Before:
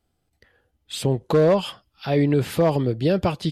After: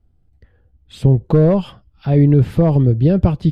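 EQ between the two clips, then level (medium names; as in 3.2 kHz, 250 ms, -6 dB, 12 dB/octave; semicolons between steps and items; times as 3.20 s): RIAA curve playback; bass shelf 340 Hz +4 dB; treble shelf 11 kHz +9 dB; -2.5 dB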